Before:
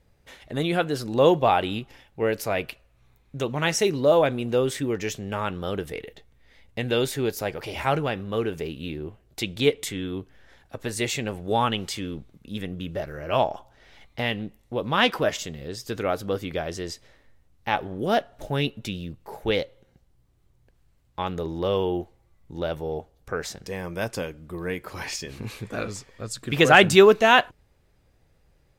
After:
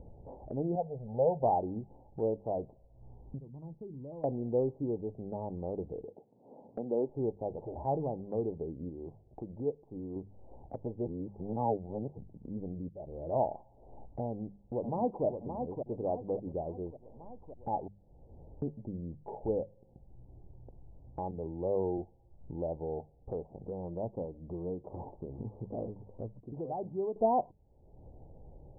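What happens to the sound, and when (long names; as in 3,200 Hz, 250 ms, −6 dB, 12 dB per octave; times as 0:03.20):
0:00.75–0:01.43: phaser with its sweep stopped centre 1,600 Hz, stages 8
0:03.38–0:04.24: guitar amp tone stack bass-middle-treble 6-0-2
0:04.84–0:05.55: parametric band 2,000 Hz −14 dB 0.93 octaves
0:06.05–0:07.09: high-pass filter 180 Hz 24 dB per octave
0:08.89–0:10.16: tilt shelving filter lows −7 dB, about 1,300 Hz
0:11.07–0:12.18: reverse
0:12.89–0:13.30: fade in
0:14.26–0:15.25: delay throw 570 ms, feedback 40%, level −6.5 dB
0:17.88–0:18.62: fill with room tone
0:21.31–0:21.98: multiband upward and downward expander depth 40%
0:26.40–0:27.16: first-order pre-emphasis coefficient 0.8
whole clip: Butterworth low-pass 890 Hz 72 dB per octave; mains-hum notches 50/100/150/200 Hz; upward compression, threshold −28 dBFS; level −7 dB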